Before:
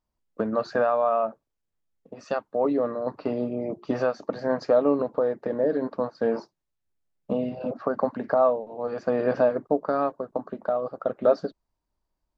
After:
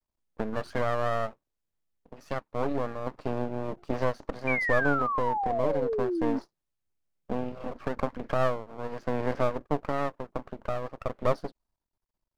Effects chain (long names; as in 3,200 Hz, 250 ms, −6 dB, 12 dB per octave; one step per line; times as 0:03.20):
0:03.11–0:04.18: dynamic equaliser 620 Hz, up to +4 dB, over −32 dBFS, Q 1.3
half-wave rectification
0:04.47–0:06.39: sound drawn into the spectrogram fall 260–2,400 Hz −27 dBFS
level −2 dB